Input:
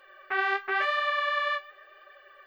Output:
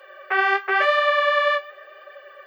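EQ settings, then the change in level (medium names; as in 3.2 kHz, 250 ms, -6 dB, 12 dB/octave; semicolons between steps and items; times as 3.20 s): steep high-pass 340 Hz; peaking EQ 550 Hz +8.5 dB 0.41 oct; band-stop 3.9 kHz, Q 12; +7.0 dB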